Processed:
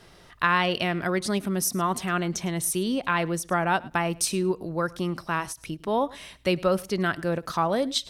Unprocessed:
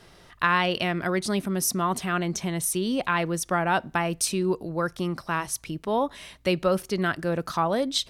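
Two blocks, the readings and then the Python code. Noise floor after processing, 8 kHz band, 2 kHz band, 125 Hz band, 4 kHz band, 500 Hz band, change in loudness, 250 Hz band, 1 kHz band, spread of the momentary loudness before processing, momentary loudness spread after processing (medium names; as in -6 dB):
-53 dBFS, -0.5 dB, 0.0 dB, 0.0 dB, -0.5 dB, 0.0 dB, 0.0 dB, 0.0 dB, 0.0 dB, 5 LU, 6 LU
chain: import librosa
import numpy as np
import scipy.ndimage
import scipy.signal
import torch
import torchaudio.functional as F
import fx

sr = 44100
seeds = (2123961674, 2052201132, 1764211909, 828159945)

y = fx.echo_feedback(x, sr, ms=106, feedback_pct=15, wet_db=-22.5)
y = fx.end_taper(y, sr, db_per_s=400.0)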